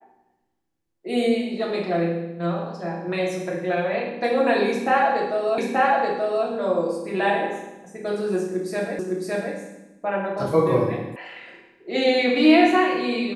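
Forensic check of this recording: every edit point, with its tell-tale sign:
5.58 s: repeat of the last 0.88 s
8.99 s: repeat of the last 0.56 s
11.16 s: sound stops dead

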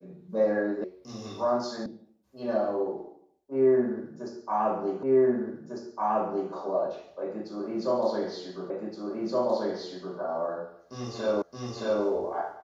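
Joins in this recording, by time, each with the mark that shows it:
0.84 s: sound stops dead
1.86 s: sound stops dead
5.03 s: repeat of the last 1.5 s
8.70 s: repeat of the last 1.47 s
11.42 s: repeat of the last 0.62 s

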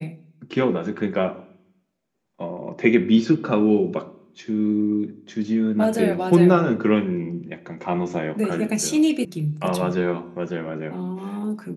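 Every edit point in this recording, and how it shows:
9.25 s: sound stops dead

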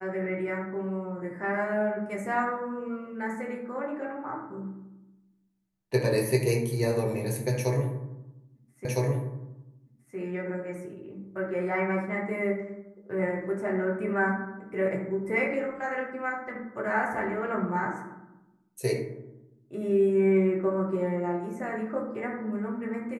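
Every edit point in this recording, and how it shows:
8.85 s: repeat of the last 1.31 s

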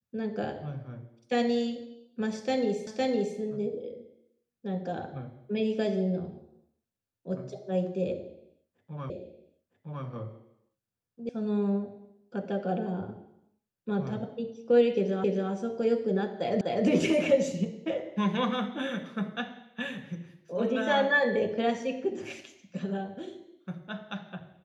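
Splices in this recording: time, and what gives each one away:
2.87 s: repeat of the last 0.51 s
9.10 s: repeat of the last 0.96 s
11.29 s: sound stops dead
15.24 s: repeat of the last 0.27 s
16.61 s: repeat of the last 0.25 s

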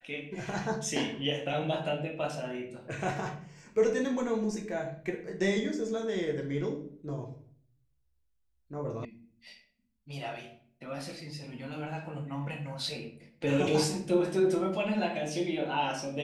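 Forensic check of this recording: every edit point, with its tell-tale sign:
9.05 s: sound stops dead

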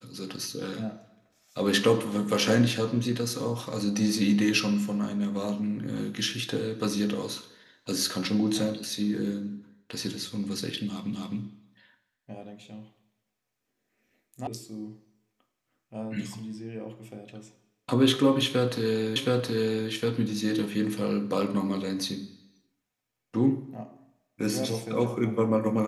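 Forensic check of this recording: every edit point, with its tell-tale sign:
11.13 s: repeat of the last 0.26 s
14.47 s: sound stops dead
19.16 s: repeat of the last 0.72 s

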